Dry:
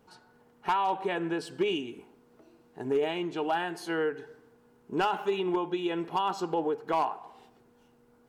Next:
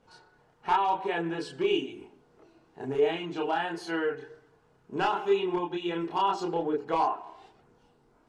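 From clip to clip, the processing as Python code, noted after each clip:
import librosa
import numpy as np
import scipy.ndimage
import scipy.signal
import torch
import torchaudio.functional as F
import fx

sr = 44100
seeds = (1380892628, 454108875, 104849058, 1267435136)

y = fx.chorus_voices(x, sr, voices=4, hz=0.5, base_ms=29, depth_ms=1.6, mix_pct=50)
y = scipy.signal.sosfilt(scipy.signal.butter(2, 7500.0, 'lowpass', fs=sr, output='sos'), y)
y = fx.hum_notches(y, sr, base_hz=60, count=8)
y = y * librosa.db_to_amplitude(4.0)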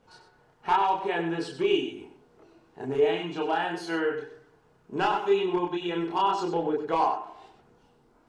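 y = x + 10.0 ** (-9.5 / 20.0) * np.pad(x, (int(96 * sr / 1000.0), 0))[:len(x)]
y = y * librosa.db_to_amplitude(1.5)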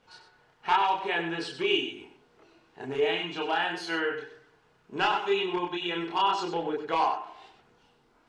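y = fx.peak_eq(x, sr, hz=2900.0, db=10.5, octaves=2.7)
y = y * librosa.db_to_amplitude(-5.0)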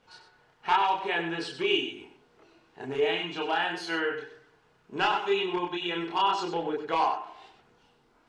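y = x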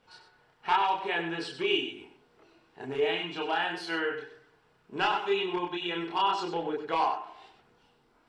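y = fx.notch(x, sr, hz=6500.0, q=10.0)
y = y * librosa.db_to_amplitude(-1.5)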